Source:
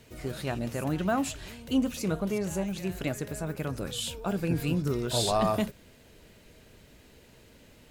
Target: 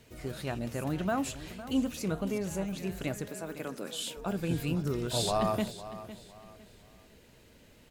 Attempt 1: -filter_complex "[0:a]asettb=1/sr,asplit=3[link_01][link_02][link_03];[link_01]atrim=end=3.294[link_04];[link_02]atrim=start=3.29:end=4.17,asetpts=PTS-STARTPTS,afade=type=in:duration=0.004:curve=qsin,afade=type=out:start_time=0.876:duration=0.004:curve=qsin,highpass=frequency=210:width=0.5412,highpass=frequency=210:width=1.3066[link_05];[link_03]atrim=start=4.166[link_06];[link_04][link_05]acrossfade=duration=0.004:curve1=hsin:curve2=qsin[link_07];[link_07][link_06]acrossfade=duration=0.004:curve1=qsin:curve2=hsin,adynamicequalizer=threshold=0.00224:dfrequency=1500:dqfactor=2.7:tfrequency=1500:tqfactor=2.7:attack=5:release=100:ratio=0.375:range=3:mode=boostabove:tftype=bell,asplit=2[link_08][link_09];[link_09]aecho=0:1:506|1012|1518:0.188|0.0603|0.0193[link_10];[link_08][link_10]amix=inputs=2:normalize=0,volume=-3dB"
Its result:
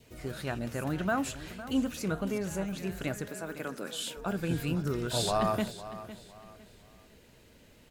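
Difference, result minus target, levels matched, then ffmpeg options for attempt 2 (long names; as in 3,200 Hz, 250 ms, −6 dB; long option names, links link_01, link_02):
2,000 Hz band +3.5 dB
-filter_complex "[0:a]asettb=1/sr,asplit=3[link_01][link_02][link_03];[link_01]atrim=end=3.294[link_04];[link_02]atrim=start=3.29:end=4.17,asetpts=PTS-STARTPTS,afade=type=in:duration=0.004:curve=qsin,afade=type=out:start_time=0.876:duration=0.004:curve=qsin,highpass=frequency=210:width=0.5412,highpass=frequency=210:width=1.3066[link_05];[link_03]atrim=start=4.166[link_06];[link_04][link_05]acrossfade=duration=0.004:curve1=hsin:curve2=qsin[link_07];[link_07][link_06]acrossfade=duration=0.004:curve1=qsin:curve2=hsin,asplit=2[link_08][link_09];[link_09]aecho=0:1:506|1012|1518:0.188|0.0603|0.0193[link_10];[link_08][link_10]amix=inputs=2:normalize=0,volume=-3dB"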